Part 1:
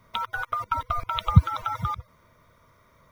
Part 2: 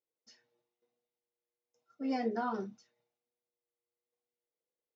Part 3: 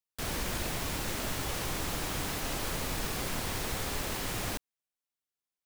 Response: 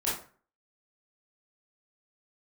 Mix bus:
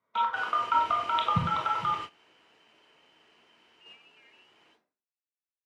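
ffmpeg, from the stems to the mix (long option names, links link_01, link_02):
-filter_complex "[0:a]highshelf=frequency=3000:gain=-4,volume=-4.5dB,asplit=2[link_01][link_02];[link_02]volume=-4dB[link_03];[1:a]adelay=1800,volume=0dB[link_04];[2:a]volume=35dB,asoftclip=hard,volume=-35dB,adelay=150,volume=-7dB,asplit=2[link_05][link_06];[link_06]volume=-5.5dB[link_07];[link_04][link_05]amix=inputs=2:normalize=0,lowpass=frequency=2600:width_type=q:width=0.5098,lowpass=frequency=2600:width_type=q:width=0.6013,lowpass=frequency=2600:width_type=q:width=0.9,lowpass=frequency=2600:width_type=q:width=2.563,afreqshift=-3100,alimiter=level_in=7dB:limit=-24dB:level=0:latency=1:release=226,volume=-7dB,volume=0dB[link_08];[3:a]atrim=start_sample=2205[link_09];[link_03][link_07]amix=inputs=2:normalize=0[link_10];[link_10][link_09]afir=irnorm=-1:irlink=0[link_11];[link_01][link_08][link_11]amix=inputs=3:normalize=0,lowpass=4200,agate=range=-19dB:threshold=-34dB:ratio=16:detection=peak,highpass=270"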